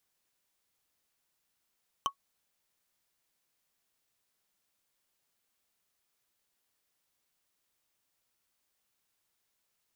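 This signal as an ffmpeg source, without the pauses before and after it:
-f lavfi -i "aevalsrc='0.0891*pow(10,-3*t/0.09)*sin(2*PI*1110*t)+0.0562*pow(10,-3*t/0.027)*sin(2*PI*3060.3*t)+0.0355*pow(10,-3*t/0.012)*sin(2*PI*5998.4*t)+0.0224*pow(10,-3*t/0.007)*sin(2*PI*9915.6*t)+0.0141*pow(10,-3*t/0.004)*sin(2*PI*14807.4*t)':d=0.45:s=44100"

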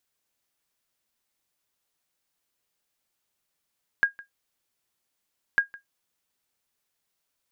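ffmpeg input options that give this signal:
-f lavfi -i "aevalsrc='0.266*(sin(2*PI*1630*mod(t,1.55))*exp(-6.91*mod(t,1.55)/0.13)+0.0794*sin(2*PI*1630*max(mod(t,1.55)-0.16,0))*exp(-6.91*max(mod(t,1.55)-0.16,0)/0.13))':d=3.1:s=44100"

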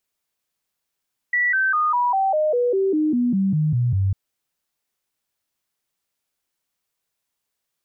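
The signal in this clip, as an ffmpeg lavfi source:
-f lavfi -i "aevalsrc='0.15*clip(min(mod(t,0.2),0.2-mod(t,0.2))/0.005,0,1)*sin(2*PI*1950*pow(2,-floor(t/0.2)/3)*mod(t,0.2))':d=2.8:s=44100"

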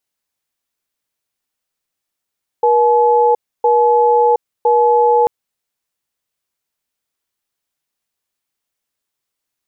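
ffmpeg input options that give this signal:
-f lavfi -i "aevalsrc='0.266*(sin(2*PI*478*t)+sin(2*PI*855*t))*clip(min(mod(t,1.01),0.72-mod(t,1.01))/0.005,0,1)':d=2.64:s=44100"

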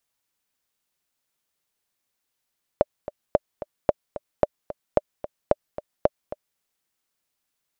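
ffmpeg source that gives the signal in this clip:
-f lavfi -i "aevalsrc='pow(10,(-3.5-14.5*gte(mod(t,2*60/222),60/222))/20)*sin(2*PI*596*mod(t,60/222))*exp(-6.91*mod(t,60/222)/0.03)':d=3.78:s=44100"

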